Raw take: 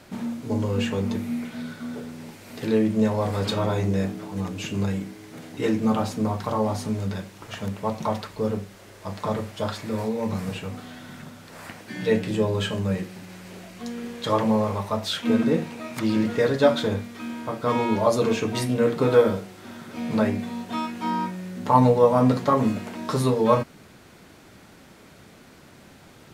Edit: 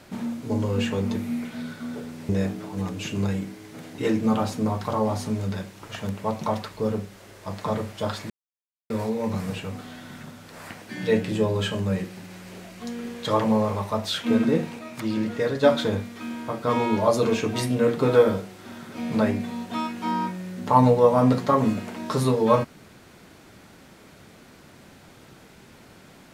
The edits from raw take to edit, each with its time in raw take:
2.29–3.88 s: delete
9.89 s: insert silence 0.60 s
15.78–16.62 s: gain -3.5 dB

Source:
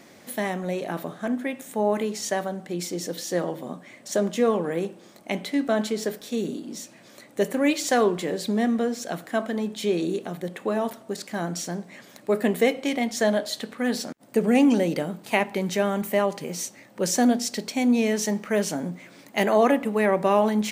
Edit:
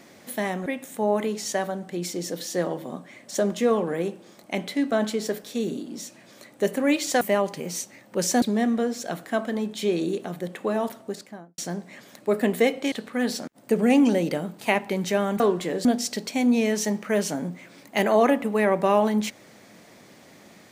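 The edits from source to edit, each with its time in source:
0.66–1.43 s: delete
7.98–8.43 s: swap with 16.05–17.26 s
11.00–11.59 s: studio fade out
12.93–13.57 s: delete

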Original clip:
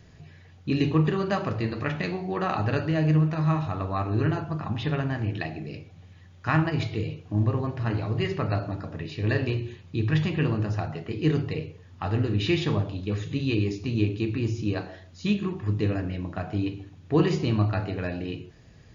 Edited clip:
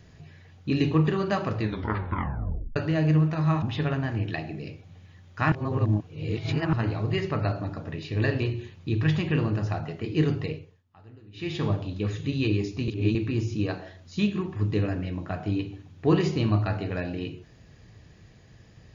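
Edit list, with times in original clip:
1.60 s: tape stop 1.16 s
3.62–4.69 s: delete
6.59–7.80 s: reverse
11.52–12.78 s: dip -24 dB, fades 0.38 s
13.95–14.22 s: reverse

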